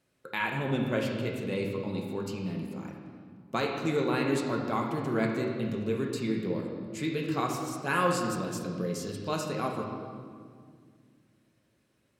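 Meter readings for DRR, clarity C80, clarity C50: -0.5 dB, 4.5 dB, 2.5 dB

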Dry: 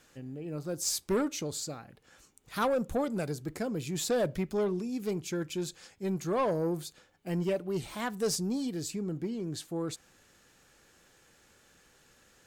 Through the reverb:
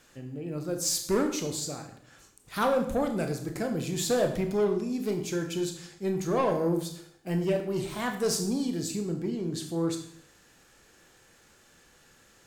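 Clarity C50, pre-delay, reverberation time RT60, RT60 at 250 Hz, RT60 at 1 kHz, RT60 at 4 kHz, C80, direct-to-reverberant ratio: 8.5 dB, 20 ms, 0.70 s, 0.80 s, 0.60 s, 0.60 s, 11.5 dB, 4.5 dB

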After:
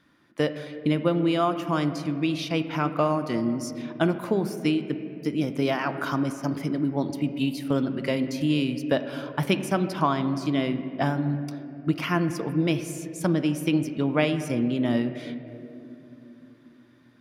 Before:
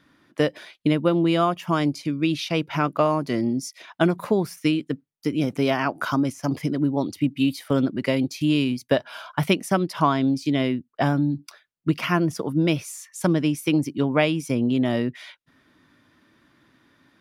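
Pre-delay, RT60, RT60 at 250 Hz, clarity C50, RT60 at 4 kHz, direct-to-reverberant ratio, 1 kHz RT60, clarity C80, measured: 5 ms, 3.0 s, 4.6 s, 10.5 dB, 1.6 s, 9.0 dB, 2.4 s, 11.0 dB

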